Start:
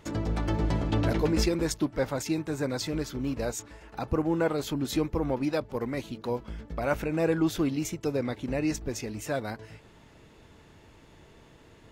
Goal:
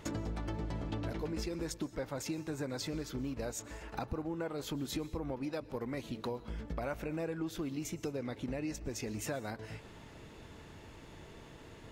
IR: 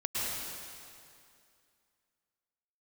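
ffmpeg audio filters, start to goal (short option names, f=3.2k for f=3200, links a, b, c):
-filter_complex "[0:a]acompressor=threshold=-38dB:ratio=6,asplit=2[a][b];[1:a]atrim=start_sample=2205,afade=t=out:st=0.28:d=0.01,atrim=end_sample=12789[c];[b][c]afir=irnorm=-1:irlink=0,volume=-21dB[d];[a][d]amix=inputs=2:normalize=0,volume=1.5dB"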